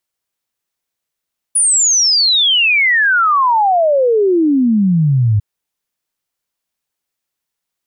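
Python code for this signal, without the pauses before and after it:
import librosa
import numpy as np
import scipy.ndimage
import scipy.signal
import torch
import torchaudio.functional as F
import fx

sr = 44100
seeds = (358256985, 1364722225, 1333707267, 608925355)

y = fx.ess(sr, length_s=3.85, from_hz=9900.0, to_hz=100.0, level_db=-9.0)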